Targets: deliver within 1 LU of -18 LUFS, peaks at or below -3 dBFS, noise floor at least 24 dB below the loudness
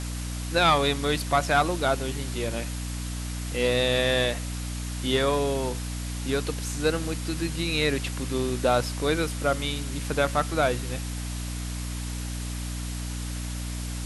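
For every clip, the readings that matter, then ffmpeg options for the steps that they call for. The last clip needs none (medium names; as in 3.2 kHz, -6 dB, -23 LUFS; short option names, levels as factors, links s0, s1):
hum 60 Hz; highest harmonic 300 Hz; hum level -30 dBFS; noise floor -33 dBFS; noise floor target -51 dBFS; loudness -27.0 LUFS; peak level -8.5 dBFS; loudness target -18.0 LUFS
-> -af "bandreject=f=60:t=h:w=6,bandreject=f=120:t=h:w=6,bandreject=f=180:t=h:w=6,bandreject=f=240:t=h:w=6,bandreject=f=300:t=h:w=6"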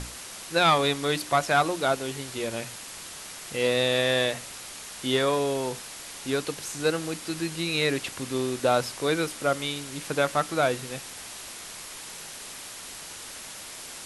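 hum not found; noise floor -41 dBFS; noise floor target -51 dBFS
-> -af "afftdn=nr=10:nf=-41"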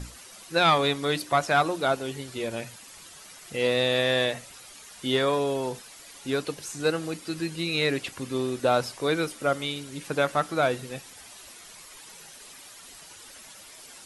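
noise floor -48 dBFS; noise floor target -51 dBFS
-> -af "afftdn=nr=6:nf=-48"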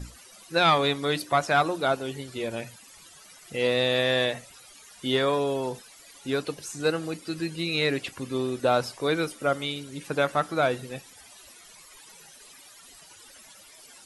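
noise floor -51 dBFS; loudness -26.5 LUFS; peak level -9.0 dBFS; loudness target -18.0 LUFS
-> -af "volume=2.66,alimiter=limit=0.708:level=0:latency=1"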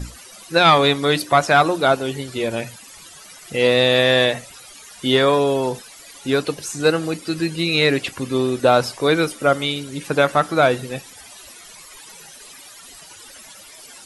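loudness -18.5 LUFS; peak level -3.0 dBFS; noise floor -43 dBFS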